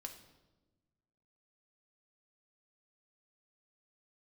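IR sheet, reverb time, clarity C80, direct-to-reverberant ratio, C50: 1.2 s, 11.5 dB, 3.0 dB, 9.0 dB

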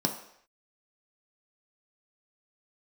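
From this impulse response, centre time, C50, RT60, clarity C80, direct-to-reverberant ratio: 19 ms, 8.5 dB, not exponential, 11.5 dB, 2.5 dB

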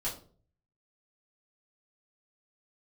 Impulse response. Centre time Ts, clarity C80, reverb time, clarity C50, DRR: 24 ms, 14.0 dB, 0.45 s, 9.0 dB, -8.5 dB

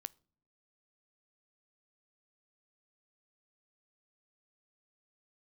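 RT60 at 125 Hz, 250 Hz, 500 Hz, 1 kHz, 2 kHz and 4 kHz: 0.75, 0.80, 0.70, 0.55, 0.35, 0.35 s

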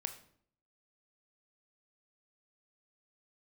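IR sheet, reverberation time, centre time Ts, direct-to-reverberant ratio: 0.60 s, 10 ms, 7.5 dB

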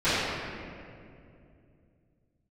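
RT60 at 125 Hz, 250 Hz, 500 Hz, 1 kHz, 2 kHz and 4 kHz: 3.8, 3.3, 2.9, 2.1, 2.0, 1.4 s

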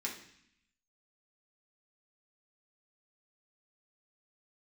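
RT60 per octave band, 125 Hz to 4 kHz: 0.95, 0.95, 0.60, 0.70, 0.90, 0.85 s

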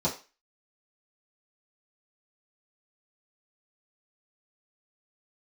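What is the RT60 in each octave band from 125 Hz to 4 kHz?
0.20, 0.30, 0.30, 0.35, 0.35, 0.35 s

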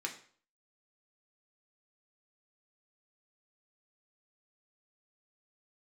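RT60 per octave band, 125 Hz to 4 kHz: 0.50, 0.45, 0.50, 0.50, 0.45, 0.45 s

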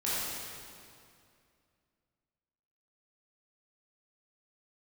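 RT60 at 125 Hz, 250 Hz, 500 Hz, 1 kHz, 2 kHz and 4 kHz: 2.7, 2.7, 2.5, 2.3, 2.1, 2.0 s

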